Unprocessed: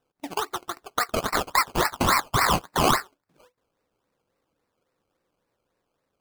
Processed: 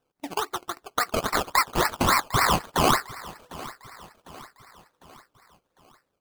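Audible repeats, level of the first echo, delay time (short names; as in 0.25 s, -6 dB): 3, -18.5 dB, 0.752 s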